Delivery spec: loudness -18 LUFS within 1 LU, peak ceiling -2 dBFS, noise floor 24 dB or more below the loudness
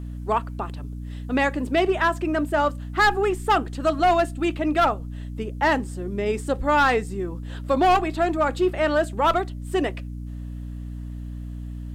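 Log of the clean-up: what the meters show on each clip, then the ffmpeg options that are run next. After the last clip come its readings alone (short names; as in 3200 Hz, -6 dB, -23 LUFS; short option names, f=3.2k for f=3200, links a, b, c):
hum 60 Hz; harmonics up to 300 Hz; hum level -30 dBFS; loudness -23.0 LUFS; peak -11.0 dBFS; loudness target -18.0 LUFS
-> -af "bandreject=f=60:t=h:w=4,bandreject=f=120:t=h:w=4,bandreject=f=180:t=h:w=4,bandreject=f=240:t=h:w=4,bandreject=f=300:t=h:w=4"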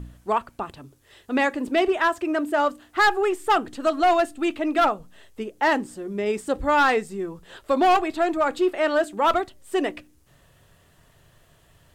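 hum none; loudness -23.0 LUFS; peak -11.5 dBFS; loudness target -18.0 LUFS
-> -af "volume=5dB"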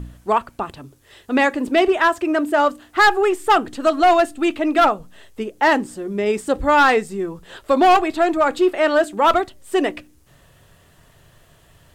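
loudness -18.0 LUFS; peak -6.5 dBFS; noise floor -53 dBFS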